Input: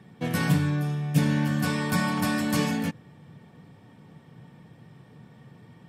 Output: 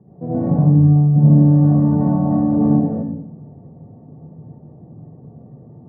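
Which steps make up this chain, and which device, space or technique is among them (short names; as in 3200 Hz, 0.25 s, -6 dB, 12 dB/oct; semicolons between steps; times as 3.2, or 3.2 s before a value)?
next room (LPF 690 Hz 24 dB/oct; reverb RT60 0.75 s, pre-delay 69 ms, DRR -8 dB); gain +2 dB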